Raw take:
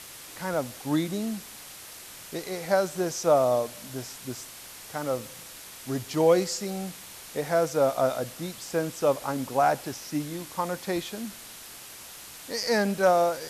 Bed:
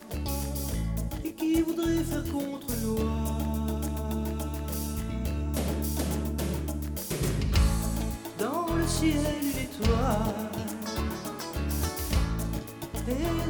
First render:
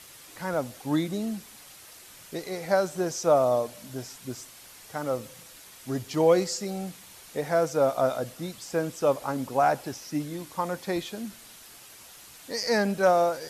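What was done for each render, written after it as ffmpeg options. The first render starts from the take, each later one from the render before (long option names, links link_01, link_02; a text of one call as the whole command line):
ffmpeg -i in.wav -af "afftdn=noise_reduction=6:noise_floor=-45" out.wav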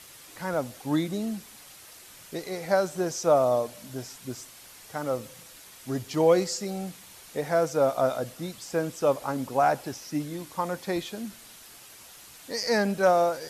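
ffmpeg -i in.wav -af anull out.wav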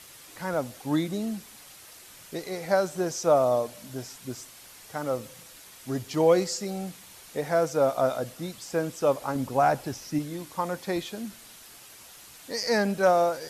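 ffmpeg -i in.wav -filter_complex "[0:a]asettb=1/sr,asplit=3[link_01][link_02][link_03];[link_01]atrim=end=9.354[link_04];[link_02]atrim=start=9.35:end=10.19,asetpts=PTS-STARTPTS,afade=type=in:duration=0.004:curve=qsin,afade=type=out:start_time=0.836:duration=0.004:curve=qsin,lowshelf=frequency=130:gain=9.5[link_05];[link_03]atrim=start=10.186[link_06];[link_04][link_05]acrossfade=duration=0.004:curve1=hsin:curve2=qsin[link_07];[link_07][link_06]acrossfade=duration=0.004:curve1=qsin:curve2=hsin" out.wav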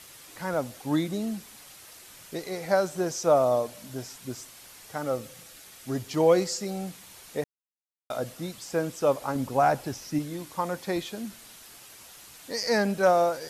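ffmpeg -i in.wav -filter_complex "[0:a]asettb=1/sr,asplit=3[link_01][link_02][link_03];[link_01]atrim=end=4.984[link_04];[link_02]atrim=start=4.98:end=5.88,asetpts=PTS-STARTPTS,afade=type=in:duration=0.004:curve=qsin,afade=type=out:start_time=0.896:duration=0.004:curve=qsin,asuperstop=centerf=990:order=4:qfactor=7.7[link_05];[link_03]atrim=start=5.876[link_06];[link_04][link_05]acrossfade=duration=0.004:curve1=hsin:curve2=qsin[link_07];[link_07][link_06]acrossfade=duration=0.004:curve1=qsin:curve2=hsin,asplit=3[link_08][link_09][link_10];[link_08]atrim=end=7.44,asetpts=PTS-STARTPTS,afade=type=out:start_time=7.436:duration=0.004:curve=hsin[link_11];[link_09]atrim=start=7.44:end=8.1,asetpts=PTS-STARTPTS,volume=0[link_12];[link_10]atrim=start=8.1,asetpts=PTS-STARTPTS,afade=type=in:duration=0.004:curve=hsin[link_13];[link_11][link_12][link_13]concat=n=3:v=0:a=1" out.wav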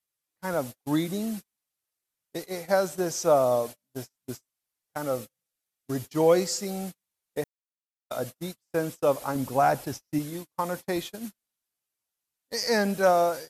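ffmpeg -i in.wav -af "agate=range=-41dB:threshold=-35dB:ratio=16:detection=peak,highshelf=frequency=11000:gain=10" out.wav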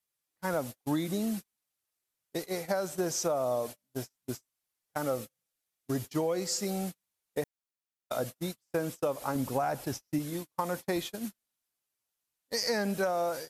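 ffmpeg -i in.wav -af "alimiter=limit=-14.5dB:level=0:latency=1:release=303,acompressor=threshold=-26dB:ratio=10" out.wav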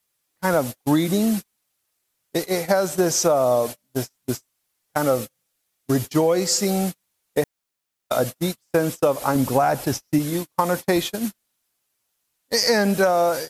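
ffmpeg -i in.wav -af "volume=11.5dB" out.wav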